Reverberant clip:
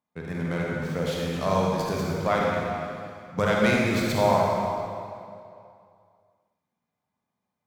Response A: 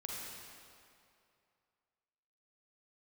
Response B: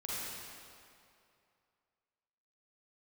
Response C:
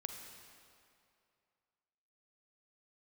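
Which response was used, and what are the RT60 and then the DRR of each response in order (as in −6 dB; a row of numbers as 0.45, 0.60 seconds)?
A; 2.5, 2.5, 2.5 seconds; −3.5, −8.0, 4.0 decibels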